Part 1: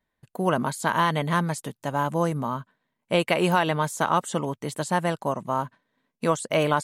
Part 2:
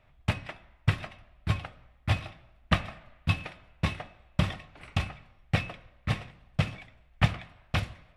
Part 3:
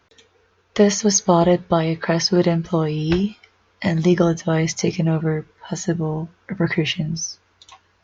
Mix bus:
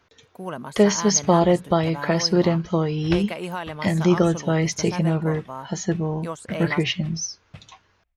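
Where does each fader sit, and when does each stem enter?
−9.0, −17.0, −2.0 decibels; 0.00, 0.95, 0.00 seconds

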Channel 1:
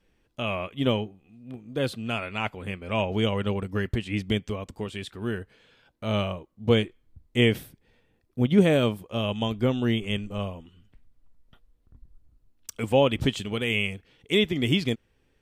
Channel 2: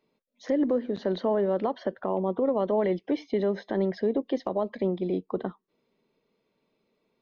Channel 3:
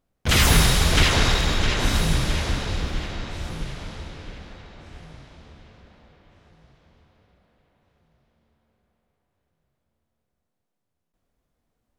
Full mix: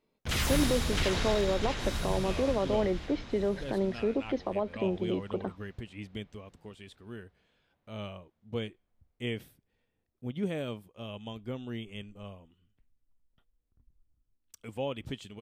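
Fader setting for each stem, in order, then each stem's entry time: −14.0, −3.5, −12.5 decibels; 1.85, 0.00, 0.00 seconds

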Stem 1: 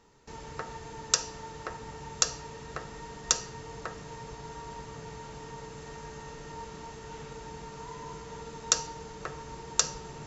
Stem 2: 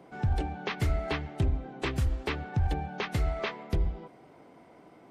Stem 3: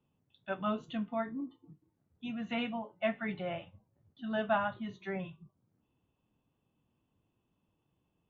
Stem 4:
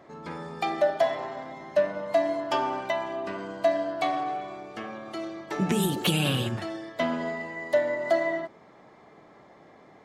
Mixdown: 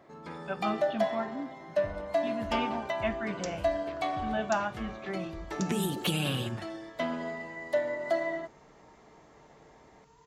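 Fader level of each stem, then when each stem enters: −18.0, −17.0, +1.0, −5.0 decibels; 2.30, 1.60, 0.00, 0.00 seconds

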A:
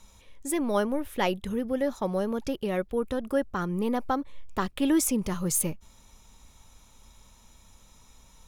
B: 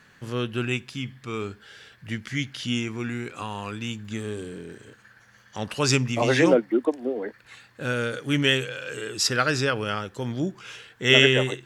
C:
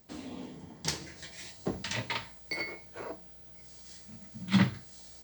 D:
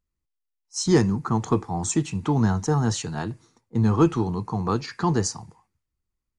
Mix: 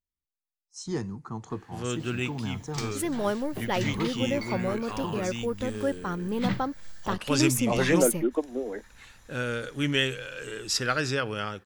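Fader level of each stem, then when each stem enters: −2.0, −4.0, −4.5, −13.0 decibels; 2.50, 1.50, 1.90, 0.00 seconds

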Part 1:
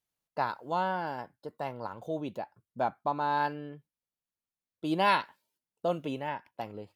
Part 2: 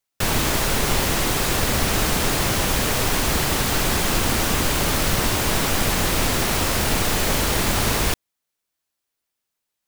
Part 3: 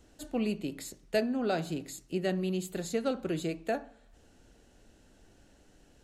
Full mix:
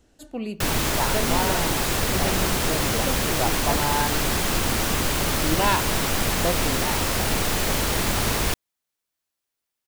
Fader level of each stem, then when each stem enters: +2.5, −2.5, 0.0 decibels; 0.60, 0.40, 0.00 seconds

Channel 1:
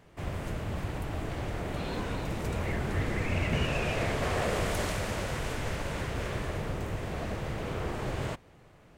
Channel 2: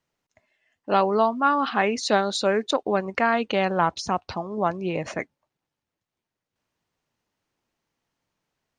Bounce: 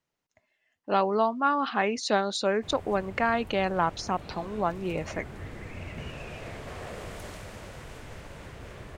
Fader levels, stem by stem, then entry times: −10.0, −4.0 decibels; 2.45, 0.00 seconds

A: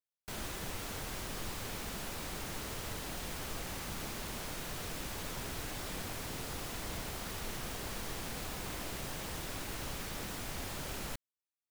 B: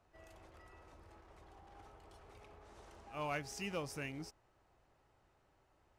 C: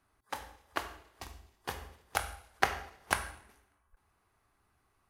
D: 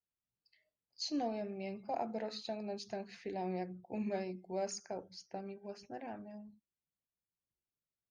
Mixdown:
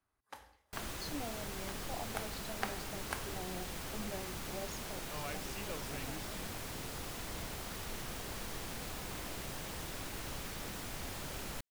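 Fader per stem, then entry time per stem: −2.0, −5.0, −11.0, −7.0 decibels; 0.45, 1.95, 0.00, 0.00 seconds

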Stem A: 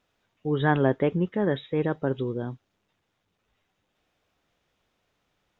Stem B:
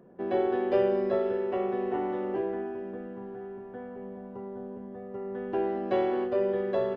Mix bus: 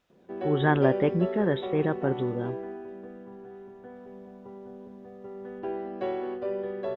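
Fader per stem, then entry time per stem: −0.5, −4.5 decibels; 0.00, 0.10 seconds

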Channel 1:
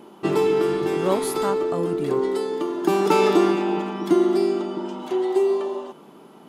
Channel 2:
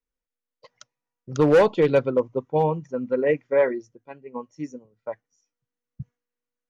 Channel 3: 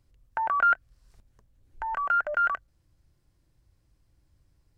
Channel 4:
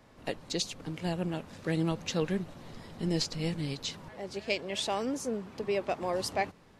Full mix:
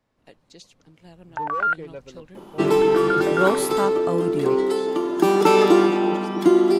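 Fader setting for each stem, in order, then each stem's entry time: +2.5, −19.5, 0.0, −14.5 decibels; 2.35, 0.00, 1.00, 0.00 seconds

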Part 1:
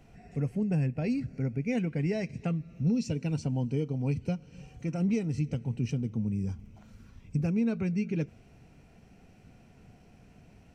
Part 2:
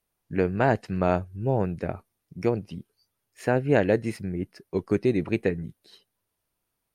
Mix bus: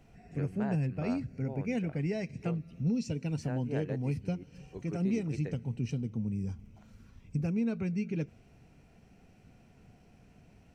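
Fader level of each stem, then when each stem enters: −3.0, −18.0 decibels; 0.00, 0.00 seconds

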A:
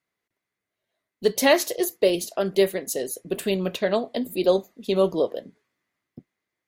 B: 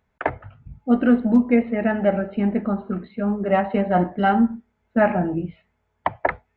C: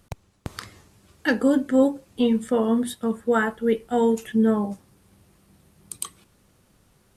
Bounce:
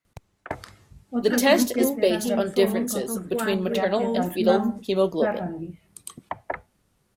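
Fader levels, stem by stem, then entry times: −1.0, −9.0, −7.5 decibels; 0.00, 0.25, 0.05 seconds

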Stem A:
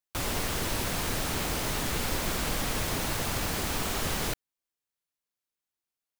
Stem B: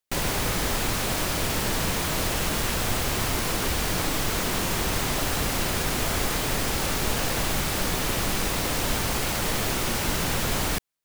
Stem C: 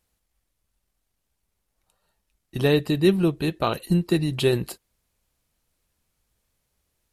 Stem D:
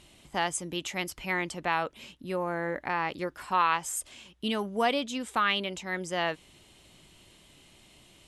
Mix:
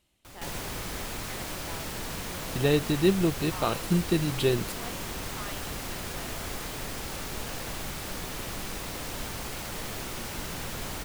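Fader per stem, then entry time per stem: −17.5, −10.0, −4.0, −17.5 decibels; 0.10, 0.30, 0.00, 0.00 seconds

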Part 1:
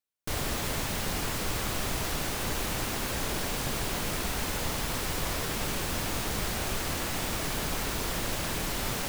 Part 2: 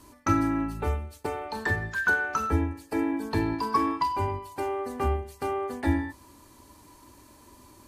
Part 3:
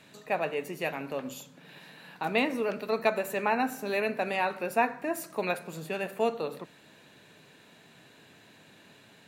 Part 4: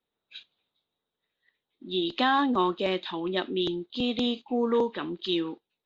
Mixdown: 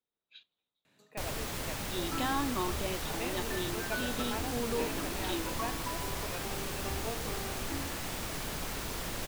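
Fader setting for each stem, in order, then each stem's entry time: −6.0, −15.5, −14.0, −10.0 decibels; 0.90, 1.85, 0.85, 0.00 seconds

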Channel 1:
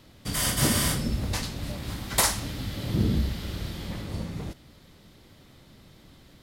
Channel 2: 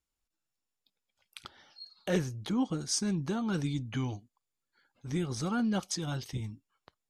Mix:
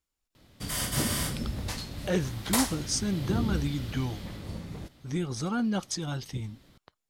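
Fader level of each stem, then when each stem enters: −5.0, +1.5 decibels; 0.35, 0.00 seconds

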